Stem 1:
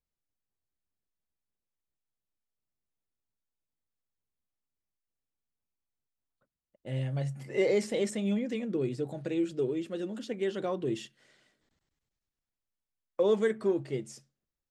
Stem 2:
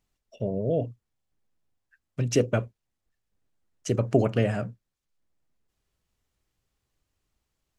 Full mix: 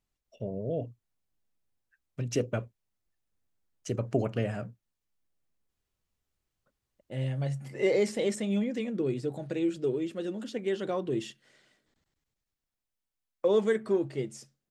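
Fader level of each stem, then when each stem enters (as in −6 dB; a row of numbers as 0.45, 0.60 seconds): +1.0, −6.5 decibels; 0.25, 0.00 seconds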